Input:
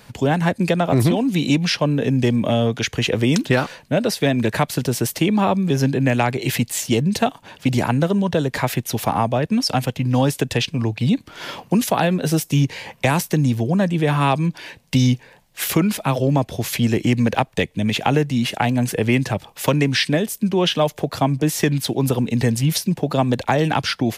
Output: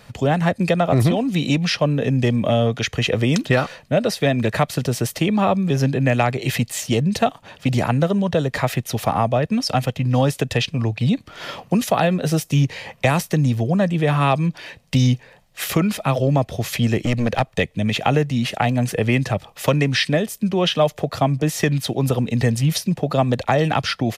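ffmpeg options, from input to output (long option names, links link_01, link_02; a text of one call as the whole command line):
ffmpeg -i in.wav -filter_complex "[0:a]asettb=1/sr,asplit=3[link_01][link_02][link_03];[link_01]atrim=end=16.994[link_04];[link_02]atrim=start=16.99:end=17.46,asetpts=PTS-STARTPTS,afade=type=in:duration=0.004:curve=qsin,afade=type=out:start_time=0.466:duration=0.004:curve=qsin,aeval=exprs='clip(val(0),-1,0.126)':channel_layout=same[link_05];[link_03]atrim=start=17.456[link_06];[link_04][link_05]acrossfade=duration=0.004:curve1=hsin:curve2=qsin[link_07];[link_07][link_06]acrossfade=duration=0.004:curve1=qsin:curve2=hsin,highshelf=frequency=7700:gain=-6.5,aecho=1:1:1.6:0.3" out.wav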